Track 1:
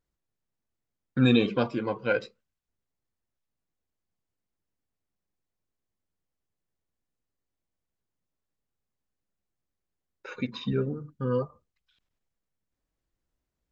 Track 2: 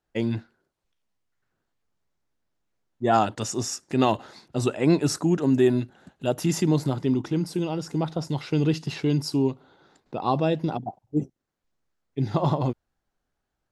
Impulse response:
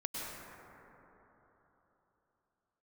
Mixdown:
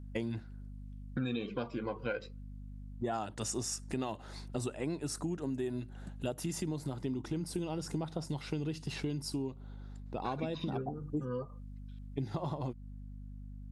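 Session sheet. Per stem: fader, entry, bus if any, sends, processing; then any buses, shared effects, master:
-1.5 dB, 0.00 s, no send, none
-4.5 dB, 0.00 s, no send, peaking EQ 9.3 kHz +9.5 dB 0.4 oct; gain riding within 4 dB 0.5 s; hum 50 Hz, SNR 15 dB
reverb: none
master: compression, threshold -33 dBFS, peak gain reduction 14 dB

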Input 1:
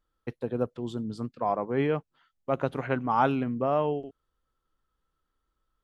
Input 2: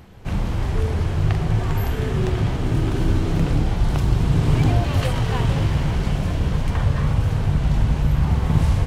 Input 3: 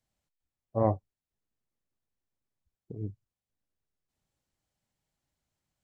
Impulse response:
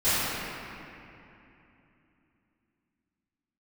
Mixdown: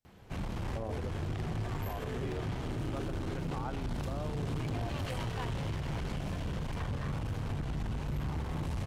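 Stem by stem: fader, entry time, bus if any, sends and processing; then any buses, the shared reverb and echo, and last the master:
-13.5 dB, 0.45 s, no send, none
-7.0 dB, 0.05 s, no send, valve stage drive 17 dB, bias 0.4; bass shelf 140 Hz -5.5 dB
-6.0 dB, 0.00 s, no send, none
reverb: none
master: peak limiter -28 dBFS, peak gain reduction 11.5 dB

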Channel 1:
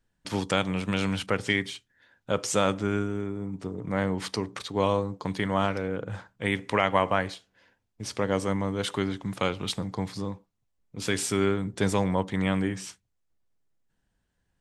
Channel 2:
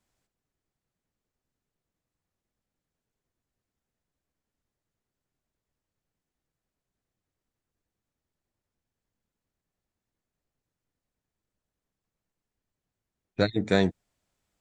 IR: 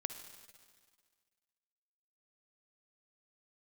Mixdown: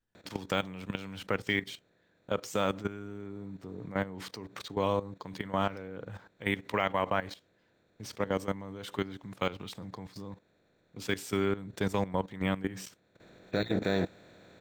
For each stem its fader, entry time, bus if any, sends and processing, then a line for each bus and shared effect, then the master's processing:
-2.0 dB, 0.00 s, no send, none
-0.5 dB, 0.15 s, no send, spectral levelling over time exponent 0.4; auto duck -13 dB, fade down 0.25 s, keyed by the first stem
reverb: none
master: bass shelf 64 Hz -4 dB; level held to a coarse grid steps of 14 dB; decimation joined by straight lines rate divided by 2×

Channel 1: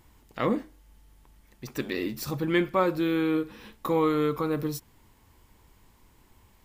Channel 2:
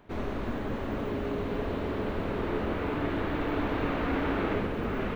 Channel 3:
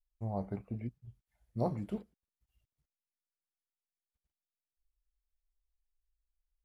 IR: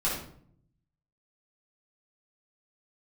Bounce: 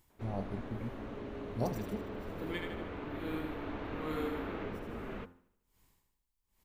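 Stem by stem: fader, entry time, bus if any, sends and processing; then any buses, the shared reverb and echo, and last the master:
-12.0 dB, 0.00 s, no send, echo send -4.5 dB, logarithmic tremolo 1.2 Hz, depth 39 dB
-9.5 dB, 0.10 s, no send, echo send -23.5 dB, Chebyshev low-pass 7.1 kHz, order 2; treble shelf 3.1 kHz -7.5 dB
-1.5 dB, 0.00 s, no send, no echo send, none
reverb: none
echo: feedback delay 77 ms, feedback 54%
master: treble shelf 4.3 kHz +7.5 dB; de-hum 87.42 Hz, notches 21

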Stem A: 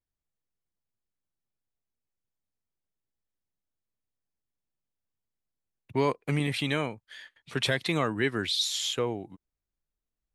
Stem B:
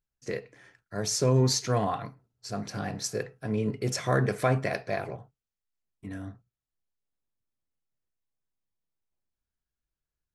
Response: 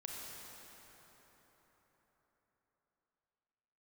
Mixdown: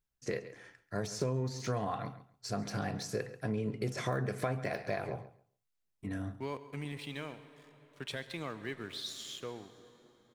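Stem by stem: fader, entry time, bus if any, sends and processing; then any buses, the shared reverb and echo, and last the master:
-14.0 dB, 0.45 s, send -8.5 dB, echo send -17.5 dB, crossover distortion -45 dBFS
+0.5 dB, 0.00 s, no send, echo send -17.5 dB, de-esser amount 95%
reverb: on, RT60 4.6 s, pre-delay 28 ms
echo: feedback delay 137 ms, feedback 18%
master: compression 5:1, threshold -31 dBFS, peak gain reduction 13 dB

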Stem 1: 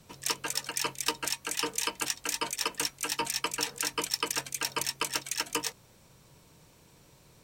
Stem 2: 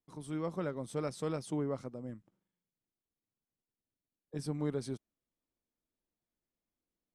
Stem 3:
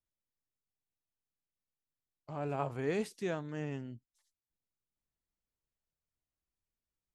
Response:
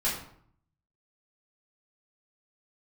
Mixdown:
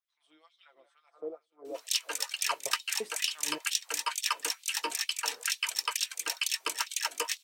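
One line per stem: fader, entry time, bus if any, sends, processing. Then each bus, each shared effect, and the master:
-1.0 dB, 1.65 s, no send, no echo send, high-pass 870 Hz 6 dB/octave
-6.5 dB, 0.00 s, no send, echo send -12.5 dB, peaking EQ 700 Hz +12 dB 0.4 oct; comb 5.9 ms, depth 52%; wah-wah 0.5 Hz 360–3700 Hz, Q 2.7
-3.0 dB, 0.00 s, no send, no echo send, trance gate "x.x..xx.x..xx.x" 130 bpm -60 dB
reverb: none
echo: feedback delay 181 ms, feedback 48%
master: LFO high-pass sine 2.2 Hz 310–3600 Hz

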